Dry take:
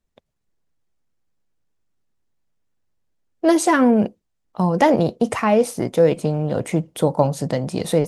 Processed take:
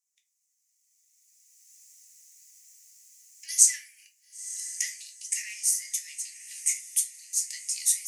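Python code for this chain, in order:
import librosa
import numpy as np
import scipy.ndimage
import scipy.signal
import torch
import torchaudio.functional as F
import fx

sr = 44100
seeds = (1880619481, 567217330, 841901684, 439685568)

p1 = fx.recorder_agc(x, sr, target_db=-6.5, rise_db_per_s=17.0, max_gain_db=30)
p2 = scipy.signal.sosfilt(scipy.signal.butter(16, 1900.0, 'highpass', fs=sr, output='sos'), p1)
p3 = fx.high_shelf_res(p2, sr, hz=4800.0, db=11.0, q=3.0)
p4 = p3 + fx.echo_diffused(p3, sr, ms=1000, feedback_pct=44, wet_db=-14.0, dry=0)
p5 = fx.room_shoebox(p4, sr, seeds[0], volume_m3=150.0, walls='furnished', distance_m=1.2)
y = p5 * librosa.db_to_amplitude(-9.5)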